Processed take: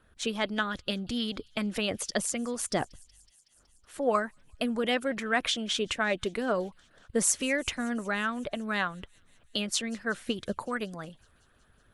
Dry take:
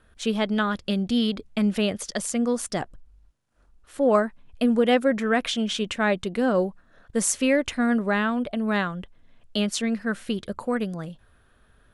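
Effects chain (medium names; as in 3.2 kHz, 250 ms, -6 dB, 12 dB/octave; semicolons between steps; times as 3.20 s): feedback echo behind a high-pass 186 ms, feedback 76%, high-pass 4 kHz, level -21.5 dB; harmonic-percussive split harmonic -10 dB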